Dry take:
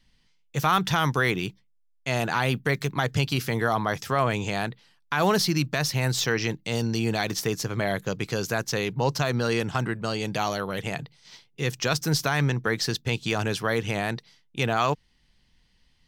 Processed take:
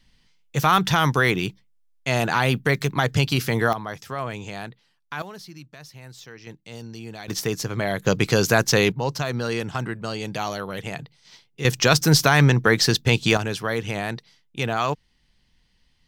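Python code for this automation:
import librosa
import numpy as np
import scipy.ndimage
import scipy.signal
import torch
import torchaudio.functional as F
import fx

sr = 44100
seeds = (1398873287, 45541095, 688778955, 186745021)

y = fx.gain(x, sr, db=fx.steps((0.0, 4.0), (3.73, -6.0), (5.22, -18.0), (6.47, -11.5), (7.28, 1.5), (8.05, 9.0), (8.92, -1.0), (11.65, 8.0), (13.37, 0.0)))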